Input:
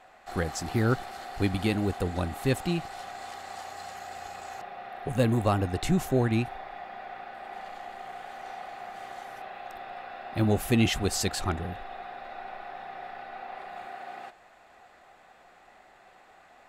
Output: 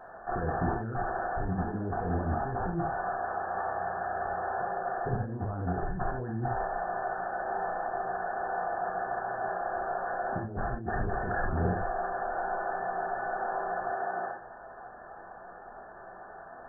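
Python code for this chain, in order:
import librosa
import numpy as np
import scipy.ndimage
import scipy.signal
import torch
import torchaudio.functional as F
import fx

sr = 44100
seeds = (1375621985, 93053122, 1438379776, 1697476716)

y = fx.brickwall_lowpass(x, sr, high_hz=1800.0)
y = fx.over_compress(y, sr, threshold_db=-35.0, ratio=-1.0)
y = fx.rev_gated(y, sr, seeds[0], gate_ms=110, shape='flat', drr_db=-0.5)
y = y * 10.0 ** (1.5 / 20.0)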